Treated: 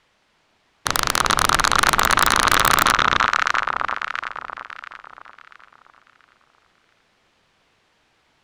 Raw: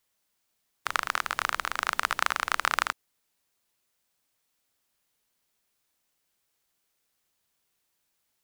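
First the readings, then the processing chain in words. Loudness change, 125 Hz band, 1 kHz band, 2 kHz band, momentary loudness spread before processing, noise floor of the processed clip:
+11.0 dB, +22.5 dB, +13.0 dB, +11.5 dB, 5 LU, −64 dBFS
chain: low-pass filter 3,000 Hz 12 dB per octave
delay that swaps between a low-pass and a high-pass 342 ms, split 1,300 Hz, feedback 57%, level −4 dB
sine wavefolder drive 17 dB, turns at −6 dBFS

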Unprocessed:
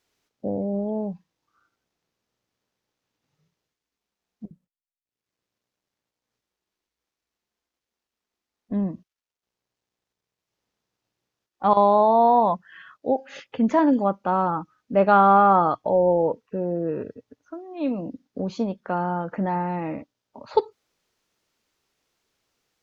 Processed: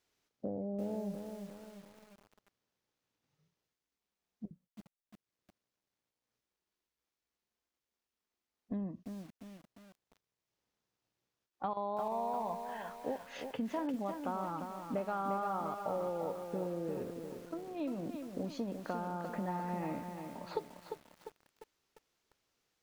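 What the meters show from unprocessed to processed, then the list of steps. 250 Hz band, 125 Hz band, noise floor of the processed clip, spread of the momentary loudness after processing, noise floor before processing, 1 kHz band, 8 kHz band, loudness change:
−14.0 dB, −13.0 dB, below −85 dBFS, 16 LU, below −85 dBFS, −18.0 dB, can't be measured, −17.5 dB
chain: downward compressor 6 to 1, threshold −29 dBFS, peak gain reduction 16 dB
feedback echo at a low word length 349 ms, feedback 55%, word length 8 bits, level −6 dB
level −6 dB

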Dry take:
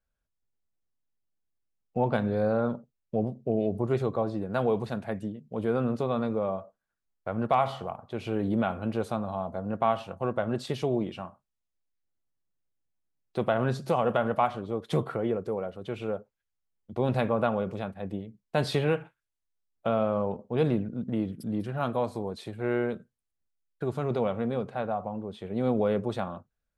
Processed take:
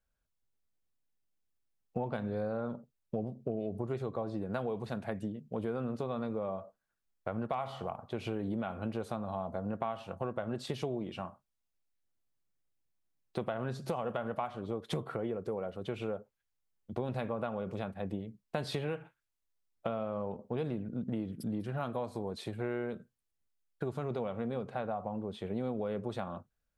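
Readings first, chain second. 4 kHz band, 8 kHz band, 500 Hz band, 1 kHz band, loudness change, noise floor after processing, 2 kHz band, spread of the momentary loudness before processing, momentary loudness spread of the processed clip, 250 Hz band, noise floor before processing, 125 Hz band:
−5.5 dB, can't be measured, −8.0 dB, −9.0 dB, −8.0 dB, −83 dBFS, −8.0 dB, 10 LU, 5 LU, −7.0 dB, −84 dBFS, −7.0 dB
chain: downward compressor, threshold −32 dBFS, peak gain reduction 12.5 dB

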